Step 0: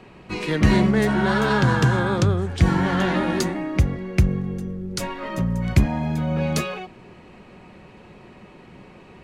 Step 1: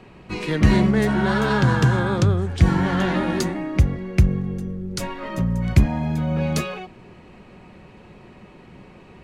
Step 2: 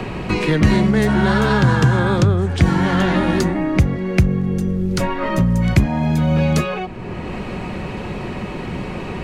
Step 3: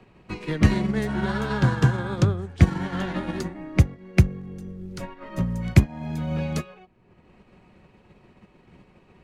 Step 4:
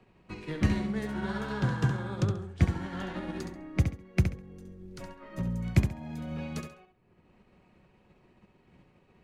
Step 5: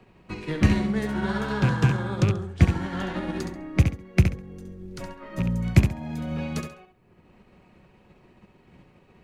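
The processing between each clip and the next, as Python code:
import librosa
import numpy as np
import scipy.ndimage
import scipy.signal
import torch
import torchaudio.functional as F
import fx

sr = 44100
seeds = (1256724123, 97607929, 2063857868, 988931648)

y1 = fx.low_shelf(x, sr, hz=160.0, db=4.0)
y1 = F.gain(torch.from_numpy(y1), -1.0).numpy()
y2 = fx.band_squash(y1, sr, depth_pct=70)
y2 = F.gain(torch.from_numpy(y2), 4.0).numpy()
y3 = fx.upward_expand(y2, sr, threshold_db=-28.0, expansion=2.5)
y4 = fx.echo_feedback(y3, sr, ms=68, feedback_pct=24, wet_db=-7.0)
y4 = F.gain(torch.from_numpy(y4), -8.5).numpy()
y5 = fx.rattle_buzz(y4, sr, strikes_db=-26.0, level_db=-31.0)
y5 = F.gain(torch.from_numpy(y5), 6.5).numpy()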